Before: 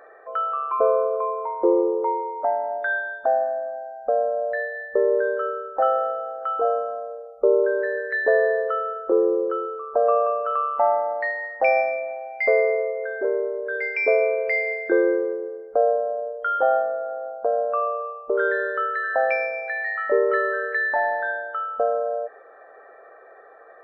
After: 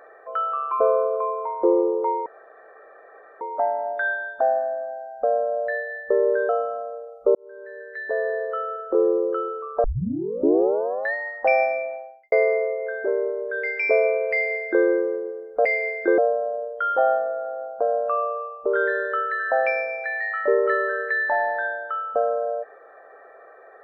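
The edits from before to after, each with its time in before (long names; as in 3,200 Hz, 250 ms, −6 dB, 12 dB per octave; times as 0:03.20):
0:02.26: splice in room tone 1.15 s
0:05.34–0:06.66: remove
0:07.52–0:09.25: fade in
0:10.01: tape start 1.30 s
0:11.99–0:12.49: fade out and dull
0:14.49–0:15.02: duplicate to 0:15.82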